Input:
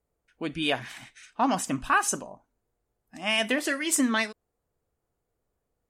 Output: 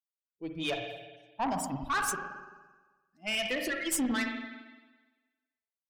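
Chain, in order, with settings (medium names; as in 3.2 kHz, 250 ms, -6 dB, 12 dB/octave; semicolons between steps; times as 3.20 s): expander on every frequency bin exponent 2; peaking EQ 13 kHz +6 dB 0.61 oct; band-stop 6.3 kHz, Q 21; spring tank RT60 1.3 s, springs 43/56 ms, chirp 45 ms, DRR 4.5 dB; valve stage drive 25 dB, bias 0.35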